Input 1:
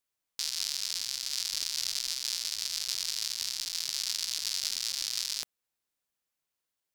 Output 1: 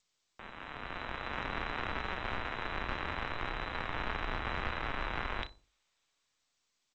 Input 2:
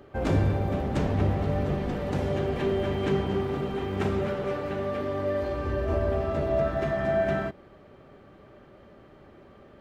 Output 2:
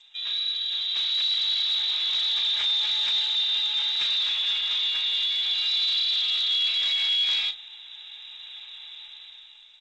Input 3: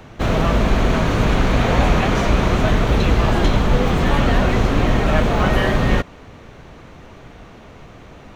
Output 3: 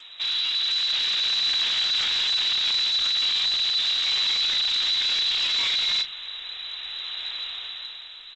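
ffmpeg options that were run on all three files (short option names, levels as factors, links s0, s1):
-filter_complex "[0:a]lowpass=f=3400:t=q:w=0.5098,lowpass=f=3400:t=q:w=0.6013,lowpass=f=3400:t=q:w=0.9,lowpass=f=3400:t=q:w=2.563,afreqshift=-4000,asubboost=boost=4:cutoff=80,acrossover=split=310|870[s0][s1][s2];[s1]acompressor=threshold=0.00158:ratio=6[s3];[s0][s3][s2]amix=inputs=3:normalize=0,alimiter=limit=0.335:level=0:latency=1:release=43,dynaudnorm=f=200:g=9:m=5.01,asoftclip=type=tanh:threshold=0.119,bandreject=f=50:t=h:w=6,bandreject=f=100:t=h:w=6,bandreject=f=150:t=h:w=6,bandreject=f=200:t=h:w=6,asplit=2[s4][s5];[s5]adelay=33,volume=0.282[s6];[s4][s6]amix=inputs=2:normalize=0,asplit=2[s7][s8];[s8]adelay=61,lowpass=f=830:p=1,volume=0.2,asplit=2[s9][s10];[s10]adelay=61,lowpass=f=830:p=1,volume=0.41,asplit=2[s11][s12];[s12]adelay=61,lowpass=f=830:p=1,volume=0.41,asplit=2[s13][s14];[s14]adelay=61,lowpass=f=830:p=1,volume=0.41[s15];[s9][s11][s13][s15]amix=inputs=4:normalize=0[s16];[s7][s16]amix=inputs=2:normalize=0,volume=0.631" -ar 16000 -c:a g722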